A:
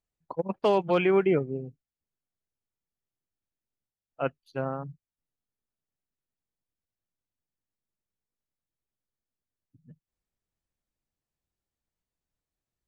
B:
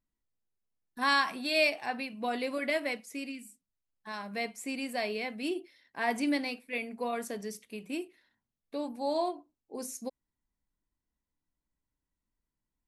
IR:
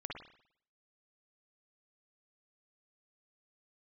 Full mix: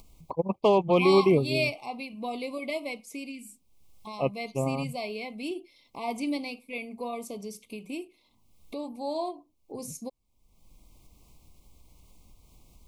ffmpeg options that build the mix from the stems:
-filter_complex "[0:a]volume=1.5dB[link_01];[1:a]volume=-1.5dB[link_02];[link_01][link_02]amix=inputs=2:normalize=0,lowshelf=frequency=97:gain=8.5,acompressor=mode=upward:threshold=-34dB:ratio=2.5,asuperstop=centerf=1600:order=20:qfactor=1.9"

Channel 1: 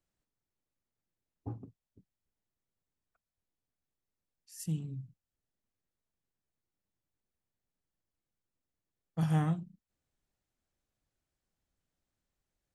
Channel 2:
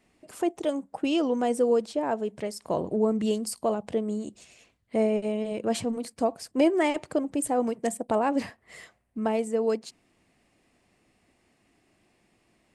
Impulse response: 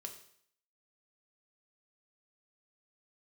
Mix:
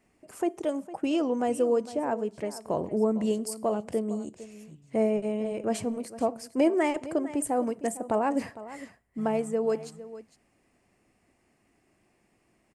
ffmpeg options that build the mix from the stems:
-filter_complex "[0:a]volume=-17dB,asplit=2[link_01][link_02];[link_02]volume=-5dB[link_03];[1:a]equalizer=frequency=3700:width_type=o:width=0.68:gain=-8,volume=-2.5dB,asplit=3[link_04][link_05][link_06];[link_05]volume=-10.5dB[link_07];[link_06]volume=-14.5dB[link_08];[2:a]atrim=start_sample=2205[link_09];[link_07][link_09]afir=irnorm=-1:irlink=0[link_10];[link_03][link_08]amix=inputs=2:normalize=0,aecho=0:1:456:1[link_11];[link_01][link_04][link_10][link_11]amix=inputs=4:normalize=0"

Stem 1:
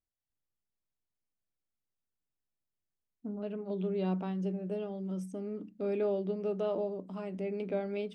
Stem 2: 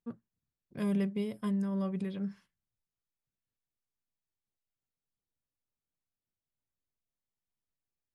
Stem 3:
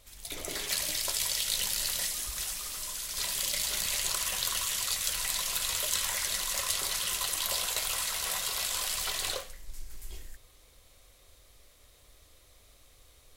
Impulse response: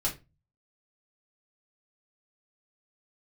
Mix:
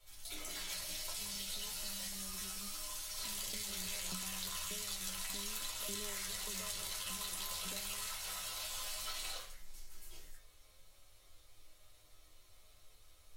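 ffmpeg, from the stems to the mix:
-filter_complex "[0:a]aeval=exprs='val(0)*pow(10,-24*if(lt(mod(1.7*n/s,1),2*abs(1.7)/1000),1-mod(1.7*n/s,1)/(2*abs(1.7)/1000),(mod(1.7*n/s,1)-2*abs(1.7)/1000)/(1-2*abs(1.7)/1000))/20)':channel_layout=same,volume=0dB,asplit=2[link_01][link_02];[1:a]adelay=400,volume=-18dB[link_03];[2:a]asoftclip=type=hard:threshold=-12.5dB,lowshelf=frequency=310:gain=-8.5,volume=-3dB,asplit=2[link_04][link_05];[link_05]volume=-3.5dB[link_06];[link_02]apad=whole_len=589517[link_07];[link_04][link_07]sidechaingate=range=-33dB:threshold=-60dB:ratio=16:detection=peak[link_08];[3:a]atrim=start_sample=2205[link_09];[link_06][link_09]afir=irnorm=-1:irlink=0[link_10];[link_01][link_03][link_08][link_10]amix=inputs=4:normalize=0,acrossover=split=160|1100[link_11][link_12][link_13];[link_11]acompressor=threshold=-43dB:ratio=4[link_14];[link_12]acompressor=threshold=-51dB:ratio=4[link_15];[link_13]acompressor=threshold=-37dB:ratio=4[link_16];[link_14][link_15][link_16]amix=inputs=3:normalize=0,flanger=delay=9.7:depth=2:regen=44:speed=0.34:shape=sinusoidal"

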